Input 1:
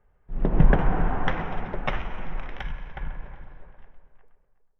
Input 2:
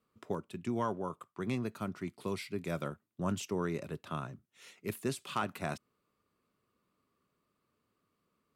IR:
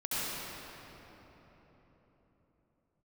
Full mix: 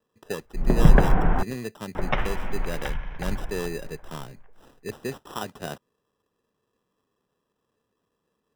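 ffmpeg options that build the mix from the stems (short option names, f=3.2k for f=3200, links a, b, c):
-filter_complex "[0:a]adelay=250,volume=2.5dB,asplit=3[a][b][c];[a]atrim=end=1.43,asetpts=PTS-STARTPTS,afade=t=out:st=1.426:d=0.004:c=hsin[d];[b]atrim=start=1.43:end=1.95,asetpts=PTS-STARTPTS,volume=0[e];[c]atrim=start=1.95,asetpts=PTS-STARTPTS,afade=t=in:d=0.004:c=hsin[f];[d][e][f]concat=n=3:v=0:a=1[g];[1:a]equalizer=f=470:w=3.1:g=8.5,acrusher=samples=20:mix=1:aa=0.000001,volume=0.5dB[h];[g][h]amix=inputs=2:normalize=0"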